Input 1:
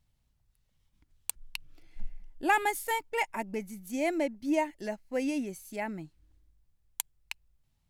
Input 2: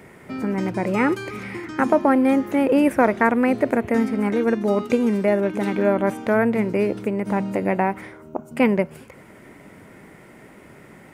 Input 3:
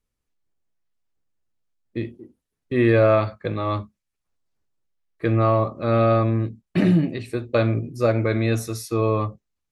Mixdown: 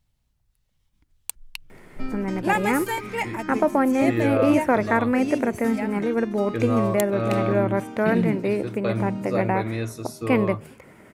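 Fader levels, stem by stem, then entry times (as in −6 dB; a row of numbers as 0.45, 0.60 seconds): +2.5, −3.0, −6.5 decibels; 0.00, 1.70, 1.30 seconds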